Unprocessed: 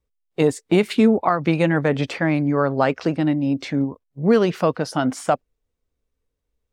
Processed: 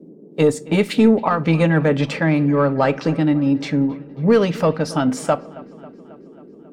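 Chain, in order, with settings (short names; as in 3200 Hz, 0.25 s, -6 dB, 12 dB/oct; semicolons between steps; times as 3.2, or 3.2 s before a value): notch comb 360 Hz; in parallel at -6 dB: soft clip -16 dBFS, distortion -12 dB; on the sum: band noise 170–440 Hz -43 dBFS; dark delay 0.271 s, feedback 63%, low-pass 3300 Hz, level -20.5 dB; reverb RT60 0.50 s, pre-delay 7 ms, DRR 15.5 dB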